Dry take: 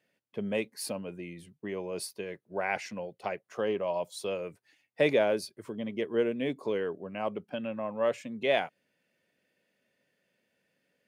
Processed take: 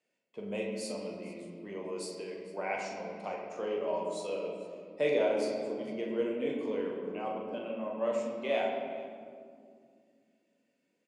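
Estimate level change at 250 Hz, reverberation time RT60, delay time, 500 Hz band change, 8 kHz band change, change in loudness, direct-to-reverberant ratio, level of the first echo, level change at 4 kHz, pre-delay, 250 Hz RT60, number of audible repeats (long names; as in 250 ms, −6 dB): −2.0 dB, 2.3 s, 41 ms, −1.5 dB, −4.5 dB, −2.5 dB, −2.5 dB, −6.5 dB, −5.0 dB, 7 ms, 3.7 s, 1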